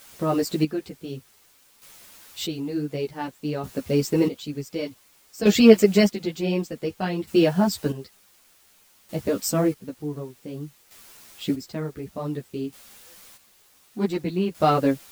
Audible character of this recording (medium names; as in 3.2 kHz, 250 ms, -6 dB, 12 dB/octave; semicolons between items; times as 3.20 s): a quantiser's noise floor 8-bit, dither triangular; chopped level 0.55 Hz, depth 65%, duty 35%; a shimmering, thickened sound